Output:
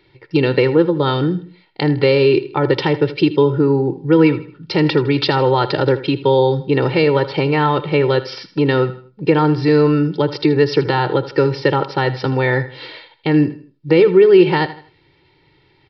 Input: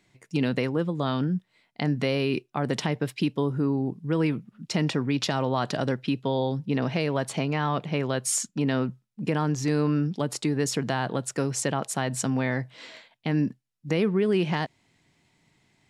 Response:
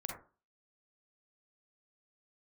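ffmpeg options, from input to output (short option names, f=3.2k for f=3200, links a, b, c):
-filter_complex "[0:a]equalizer=f=340:w=2.9:g=6,aecho=1:1:2.2:0.97,aecho=1:1:79|158|237:0.178|0.064|0.023,asplit=2[a][b];[1:a]atrim=start_sample=2205[c];[b][c]afir=irnorm=-1:irlink=0,volume=-16dB[d];[a][d]amix=inputs=2:normalize=0,aresample=11025,aresample=44100,volume=7dB"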